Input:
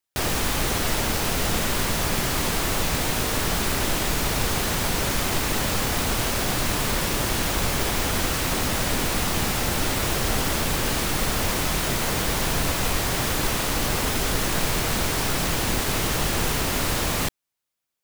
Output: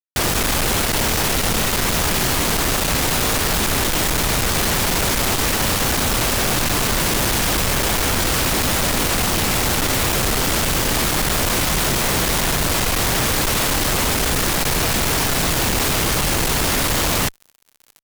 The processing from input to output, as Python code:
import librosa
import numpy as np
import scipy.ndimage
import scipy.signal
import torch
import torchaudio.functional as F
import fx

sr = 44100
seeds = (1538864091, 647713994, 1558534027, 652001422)

y = fx.echo_thinned(x, sr, ms=1073, feedback_pct=15, hz=1000.0, wet_db=-22.0)
y = fx.fuzz(y, sr, gain_db=46.0, gate_db=-40.0)
y = y * librosa.db_to_amplitude(-4.0)